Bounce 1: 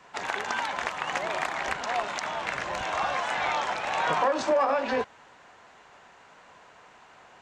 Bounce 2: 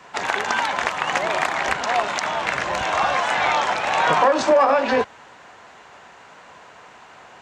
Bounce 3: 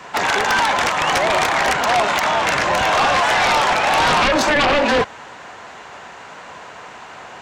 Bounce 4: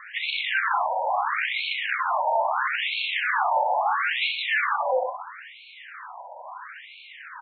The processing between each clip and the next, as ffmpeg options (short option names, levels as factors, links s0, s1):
-af "highpass=45,volume=2.51"
-af "aeval=exprs='0.596*sin(PI/2*3.98*val(0)/0.596)':c=same,volume=0.422"
-af "aecho=1:1:64|128|192|256|320|384:0.447|0.223|0.112|0.0558|0.0279|0.014,asoftclip=type=tanh:threshold=0.168,afftfilt=real='re*between(b*sr/1024,680*pow(3100/680,0.5+0.5*sin(2*PI*0.75*pts/sr))/1.41,680*pow(3100/680,0.5+0.5*sin(2*PI*0.75*pts/sr))*1.41)':imag='im*between(b*sr/1024,680*pow(3100/680,0.5+0.5*sin(2*PI*0.75*pts/sr))/1.41,680*pow(3100/680,0.5+0.5*sin(2*PI*0.75*pts/sr))*1.41)':win_size=1024:overlap=0.75"